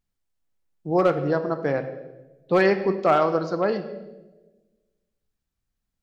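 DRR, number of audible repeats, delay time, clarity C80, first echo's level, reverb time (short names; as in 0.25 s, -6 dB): 8.5 dB, none, none, 12.5 dB, none, 1.2 s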